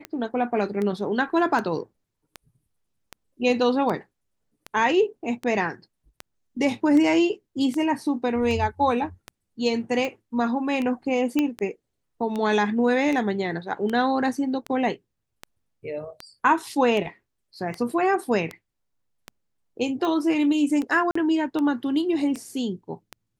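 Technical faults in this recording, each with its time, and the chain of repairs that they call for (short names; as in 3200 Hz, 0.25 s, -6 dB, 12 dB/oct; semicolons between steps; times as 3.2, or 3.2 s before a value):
tick 78 rpm -17 dBFS
11.39 pop -10 dBFS
21.11–21.15 gap 44 ms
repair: de-click; interpolate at 21.11, 44 ms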